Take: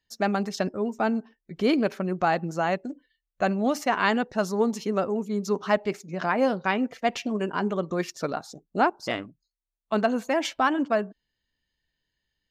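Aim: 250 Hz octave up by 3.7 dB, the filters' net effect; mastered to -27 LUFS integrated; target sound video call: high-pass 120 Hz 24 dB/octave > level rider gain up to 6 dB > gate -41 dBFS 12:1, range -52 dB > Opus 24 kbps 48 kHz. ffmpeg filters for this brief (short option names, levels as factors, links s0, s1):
-af "highpass=f=120:w=0.5412,highpass=f=120:w=1.3066,equalizer=f=250:t=o:g=4.5,dynaudnorm=m=2,agate=range=0.00251:threshold=0.00891:ratio=12,volume=0.794" -ar 48000 -c:a libopus -b:a 24k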